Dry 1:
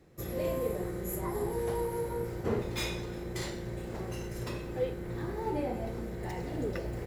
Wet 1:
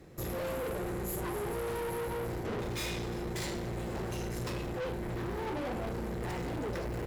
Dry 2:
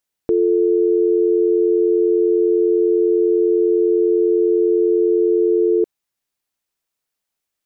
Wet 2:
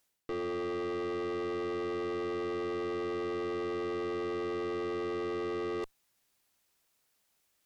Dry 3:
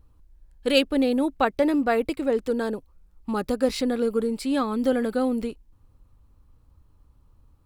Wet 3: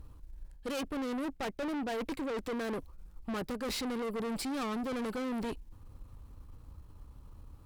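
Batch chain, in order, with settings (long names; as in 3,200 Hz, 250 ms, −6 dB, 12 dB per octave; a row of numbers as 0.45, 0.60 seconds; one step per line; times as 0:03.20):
reversed playback
downward compressor 6 to 1, threshold −29 dBFS
reversed playback
tube saturation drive 42 dB, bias 0.5
level +8.5 dB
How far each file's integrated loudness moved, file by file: −1.0, −19.0, −12.0 LU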